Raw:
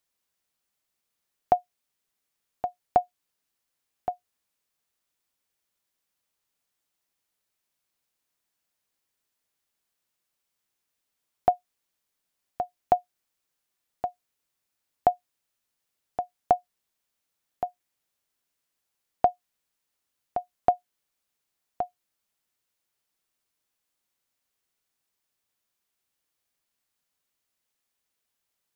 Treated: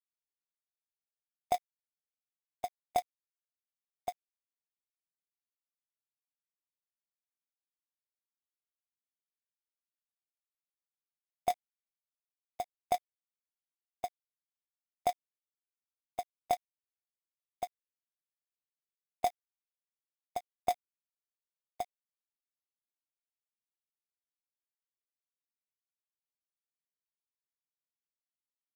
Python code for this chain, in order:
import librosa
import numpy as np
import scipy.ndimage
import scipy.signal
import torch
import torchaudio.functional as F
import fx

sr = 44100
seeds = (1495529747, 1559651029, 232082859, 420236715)

y = fx.bin_expand(x, sr, power=2.0)
y = fx.over_compress(y, sr, threshold_db=-24.0, ratio=-1.0)
y = fx.quant_companded(y, sr, bits=4)
y = F.gain(torch.from_numpy(y), -2.0).numpy()